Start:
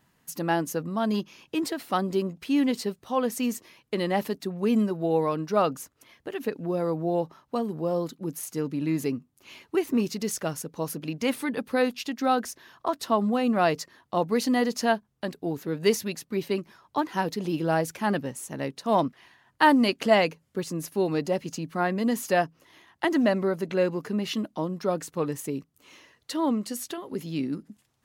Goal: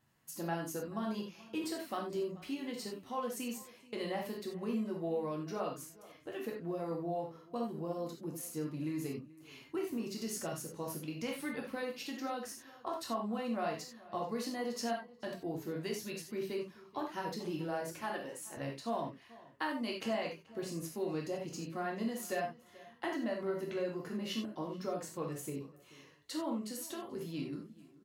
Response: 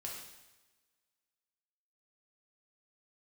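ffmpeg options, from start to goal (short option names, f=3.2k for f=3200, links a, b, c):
-filter_complex "[0:a]asettb=1/sr,asplit=3[a][b][c];[a]atrim=end=18.014[d];[b]atrim=start=18.01:end=18.57,asetpts=PTS-STARTPTS,afade=t=in:d=0.004:c=qsin,afade=t=out:st=0.556:d=0.004:c=qsin,highpass=350[e];[c]atrim=start=18.566[f];[d][e]acrossfade=d=0.004:c1=hsin:c2=qsin[g];[g][f]acrossfade=d=0.004:c1=qsin:c2=hsin,acompressor=threshold=-25dB:ratio=6,asplit=2[h][i];[i]adelay=433,lowpass=f=3.4k:p=1,volume=-20dB,asplit=2[j][k];[k]adelay=433,lowpass=f=3.4k:p=1,volume=0.31[l];[h][j][l]amix=inputs=3:normalize=0[m];[1:a]atrim=start_sample=2205,atrim=end_sample=4410[n];[m][n]afir=irnorm=-1:irlink=0,volume=-5dB"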